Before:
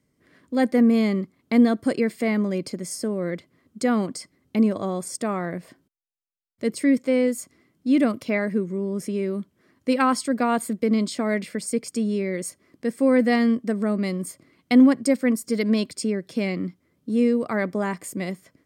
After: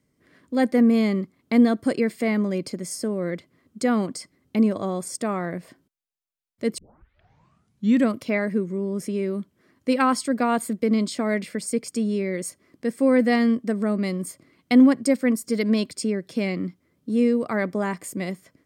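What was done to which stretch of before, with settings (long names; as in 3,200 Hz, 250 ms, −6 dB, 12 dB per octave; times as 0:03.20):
0:06.78: tape start 1.33 s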